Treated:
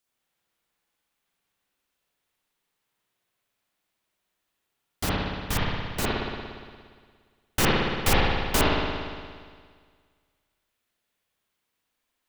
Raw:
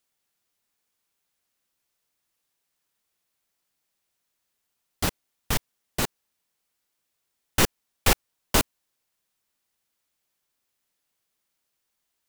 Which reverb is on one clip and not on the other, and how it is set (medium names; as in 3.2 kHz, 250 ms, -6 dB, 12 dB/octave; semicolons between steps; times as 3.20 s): spring tank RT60 1.8 s, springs 58 ms, chirp 20 ms, DRR -6 dB; trim -3.5 dB